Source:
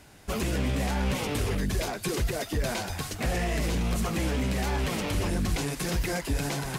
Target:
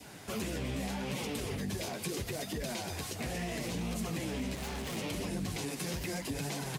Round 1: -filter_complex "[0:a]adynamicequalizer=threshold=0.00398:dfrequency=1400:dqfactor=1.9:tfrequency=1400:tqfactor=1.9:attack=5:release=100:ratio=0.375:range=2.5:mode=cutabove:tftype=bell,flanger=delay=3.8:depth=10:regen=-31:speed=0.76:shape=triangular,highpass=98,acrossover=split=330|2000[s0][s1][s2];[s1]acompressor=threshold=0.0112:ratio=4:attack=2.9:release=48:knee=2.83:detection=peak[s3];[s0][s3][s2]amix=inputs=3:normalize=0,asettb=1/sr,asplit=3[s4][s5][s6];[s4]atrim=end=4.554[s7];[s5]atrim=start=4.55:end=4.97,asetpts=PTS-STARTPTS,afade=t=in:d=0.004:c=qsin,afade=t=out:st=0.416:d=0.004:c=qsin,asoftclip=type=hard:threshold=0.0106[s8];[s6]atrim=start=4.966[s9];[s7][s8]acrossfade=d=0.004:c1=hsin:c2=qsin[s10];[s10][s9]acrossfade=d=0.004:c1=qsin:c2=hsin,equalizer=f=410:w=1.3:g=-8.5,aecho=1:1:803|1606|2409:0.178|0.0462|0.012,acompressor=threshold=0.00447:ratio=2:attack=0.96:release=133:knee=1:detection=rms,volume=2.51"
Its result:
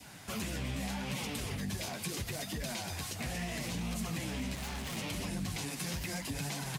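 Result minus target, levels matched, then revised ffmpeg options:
500 Hz band -4.5 dB
-filter_complex "[0:a]adynamicequalizer=threshold=0.00398:dfrequency=1400:dqfactor=1.9:tfrequency=1400:tqfactor=1.9:attack=5:release=100:ratio=0.375:range=2.5:mode=cutabove:tftype=bell,flanger=delay=3.8:depth=10:regen=-31:speed=0.76:shape=triangular,highpass=98,acrossover=split=330|2000[s0][s1][s2];[s1]acompressor=threshold=0.0112:ratio=4:attack=2.9:release=48:knee=2.83:detection=peak[s3];[s0][s3][s2]amix=inputs=3:normalize=0,asettb=1/sr,asplit=3[s4][s5][s6];[s4]atrim=end=4.554[s7];[s5]atrim=start=4.55:end=4.97,asetpts=PTS-STARTPTS,afade=t=in:d=0.004:c=qsin,afade=t=out:st=0.416:d=0.004:c=qsin,asoftclip=type=hard:threshold=0.0106[s8];[s6]atrim=start=4.966[s9];[s7][s8]acrossfade=d=0.004:c1=hsin:c2=qsin[s10];[s10][s9]acrossfade=d=0.004:c1=qsin:c2=hsin,aecho=1:1:803|1606|2409:0.178|0.0462|0.012,acompressor=threshold=0.00447:ratio=2:attack=0.96:release=133:knee=1:detection=rms,volume=2.51"

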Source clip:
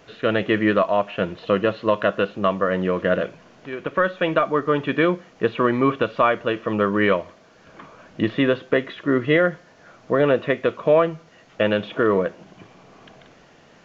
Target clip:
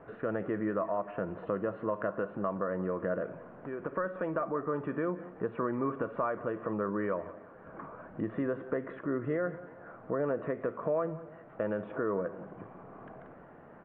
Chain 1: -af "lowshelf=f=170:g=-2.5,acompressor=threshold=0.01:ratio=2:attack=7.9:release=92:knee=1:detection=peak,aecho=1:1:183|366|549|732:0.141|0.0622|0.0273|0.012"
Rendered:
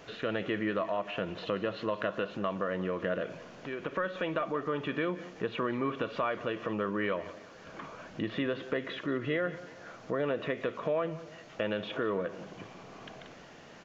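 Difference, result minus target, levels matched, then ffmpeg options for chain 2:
2 kHz band +5.0 dB
-af "lowshelf=f=170:g=-2.5,acompressor=threshold=0.01:ratio=2:attack=7.9:release=92:knee=1:detection=peak,lowpass=f=1500:w=0.5412,lowpass=f=1500:w=1.3066,aecho=1:1:183|366|549|732:0.141|0.0622|0.0273|0.012"

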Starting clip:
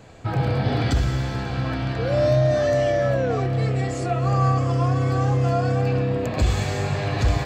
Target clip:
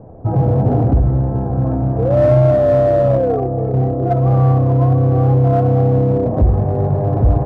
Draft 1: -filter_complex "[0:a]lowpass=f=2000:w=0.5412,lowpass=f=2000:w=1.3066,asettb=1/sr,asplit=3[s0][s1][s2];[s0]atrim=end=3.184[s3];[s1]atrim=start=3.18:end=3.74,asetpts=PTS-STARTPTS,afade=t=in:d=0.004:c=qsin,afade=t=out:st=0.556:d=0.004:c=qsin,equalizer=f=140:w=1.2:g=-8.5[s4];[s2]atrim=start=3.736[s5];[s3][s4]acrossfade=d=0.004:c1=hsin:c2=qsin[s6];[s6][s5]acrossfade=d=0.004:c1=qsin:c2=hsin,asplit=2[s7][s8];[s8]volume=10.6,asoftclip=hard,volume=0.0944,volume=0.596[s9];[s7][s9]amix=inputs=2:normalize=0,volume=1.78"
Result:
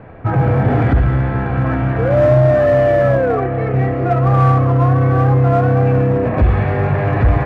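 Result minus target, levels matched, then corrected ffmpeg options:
2 kHz band +14.5 dB
-filter_complex "[0:a]lowpass=f=800:w=0.5412,lowpass=f=800:w=1.3066,asettb=1/sr,asplit=3[s0][s1][s2];[s0]atrim=end=3.184[s3];[s1]atrim=start=3.18:end=3.74,asetpts=PTS-STARTPTS,afade=t=in:d=0.004:c=qsin,afade=t=out:st=0.556:d=0.004:c=qsin,equalizer=f=140:w=1.2:g=-8.5[s4];[s2]atrim=start=3.736[s5];[s3][s4]acrossfade=d=0.004:c1=hsin:c2=qsin[s6];[s6][s5]acrossfade=d=0.004:c1=qsin:c2=hsin,asplit=2[s7][s8];[s8]volume=10.6,asoftclip=hard,volume=0.0944,volume=0.596[s9];[s7][s9]amix=inputs=2:normalize=0,volume=1.78"

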